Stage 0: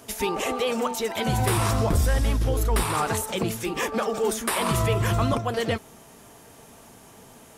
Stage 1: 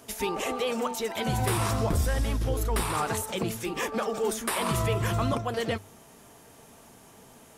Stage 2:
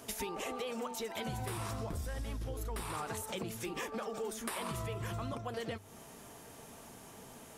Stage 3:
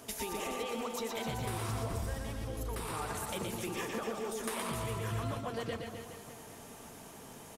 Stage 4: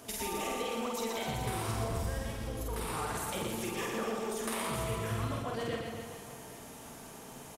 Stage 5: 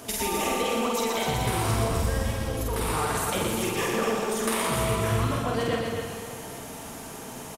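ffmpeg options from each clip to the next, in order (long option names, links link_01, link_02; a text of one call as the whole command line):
ffmpeg -i in.wav -af "bandreject=frequency=50:width_type=h:width=6,bandreject=frequency=100:width_type=h:width=6,volume=-3.5dB" out.wav
ffmpeg -i in.wav -af "acompressor=threshold=-37dB:ratio=6" out.wav
ffmpeg -i in.wav -af "aecho=1:1:120|258|416.7|599.2|809.1:0.631|0.398|0.251|0.158|0.1" out.wav
ffmpeg -i in.wav -filter_complex "[0:a]asplit=2[link_01][link_02];[link_02]adelay=49,volume=-2dB[link_03];[link_01][link_03]amix=inputs=2:normalize=0" out.wav
ffmpeg -i in.wav -af "aecho=1:1:247:0.398,volume=8.5dB" out.wav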